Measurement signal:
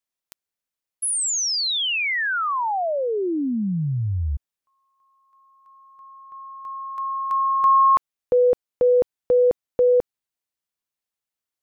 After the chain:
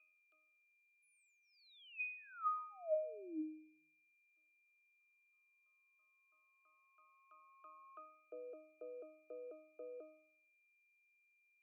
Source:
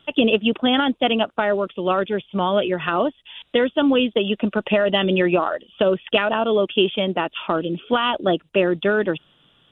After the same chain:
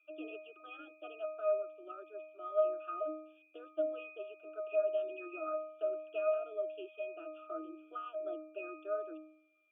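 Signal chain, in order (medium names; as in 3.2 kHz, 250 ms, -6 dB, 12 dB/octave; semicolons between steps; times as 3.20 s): whistle 2.4 kHz -35 dBFS; Chebyshev high-pass 260 Hz, order 8; static phaser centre 1.3 kHz, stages 8; pitch-class resonator D#, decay 0.62 s; trim +3 dB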